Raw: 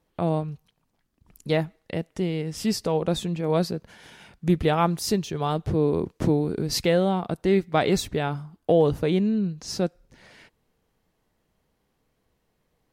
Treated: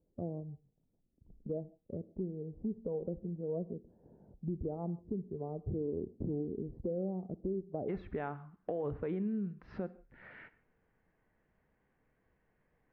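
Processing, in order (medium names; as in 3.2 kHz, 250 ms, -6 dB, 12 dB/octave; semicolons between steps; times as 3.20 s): inverse Chebyshev low-pass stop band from 2.5 kHz, stop band 70 dB, from 7.88 s stop band from 7.9 kHz; spectral noise reduction 7 dB; peak limiter -17.5 dBFS, peak gain reduction 7.5 dB; compression 2:1, threshold -49 dBFS, peak gain reduction 15 dB; reverberation, pre-delay 34 ms, DRR 16.5 dB; trim +3 dB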